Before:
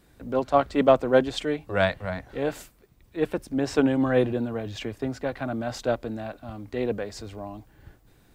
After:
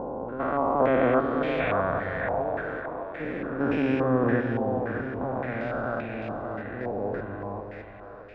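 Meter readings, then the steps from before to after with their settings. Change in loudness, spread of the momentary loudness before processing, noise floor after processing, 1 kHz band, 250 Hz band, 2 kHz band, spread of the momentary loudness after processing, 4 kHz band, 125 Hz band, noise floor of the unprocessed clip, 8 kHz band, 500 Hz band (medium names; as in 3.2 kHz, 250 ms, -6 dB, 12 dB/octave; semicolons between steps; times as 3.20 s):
-1.5 dB, 17 LU, -43 dBFS, +1.5 dB, -1.0 dB, +1.5 dB, 12 LU, -11.0 dB, 0.0 dB, -59 dBFS, under -25 dB, -2.0 dB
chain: spectrogram pixelated in time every 400 ms; two-band feedback delay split 450 Hz, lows 227 ms, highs 611 ms, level -5.5 dB; step-sequenced low-pass 3.5 Hz 860–2400 Hz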